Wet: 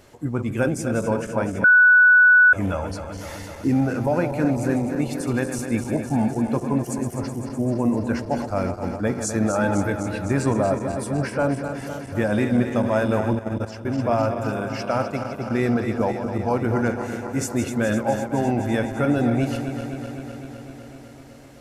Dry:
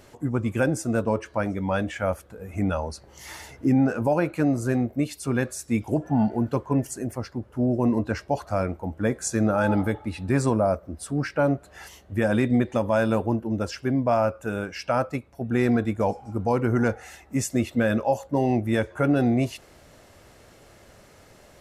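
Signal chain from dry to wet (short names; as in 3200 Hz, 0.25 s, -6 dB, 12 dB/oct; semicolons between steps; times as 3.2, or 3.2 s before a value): regenerating reverse delay 0.127 s, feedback 85%, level -9 dB; 1.64–2.53 bleep 1480 Hz -9.5 dBFS; 13.35–13.99 level quantiser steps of 12 dB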